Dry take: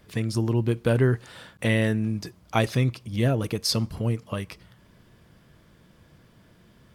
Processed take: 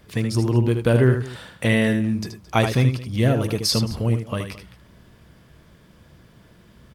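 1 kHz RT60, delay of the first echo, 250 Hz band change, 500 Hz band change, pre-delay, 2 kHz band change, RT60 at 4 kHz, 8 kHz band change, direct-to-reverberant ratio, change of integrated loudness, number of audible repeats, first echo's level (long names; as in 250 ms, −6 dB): no reverb audible, 77 ms, +4.5 dB, +4.5 dB, no reverb audible, +4.5 dB, no reverb audible, +4.5 dB, no reverb audible, +4.5 dB, 2, −7.5 dB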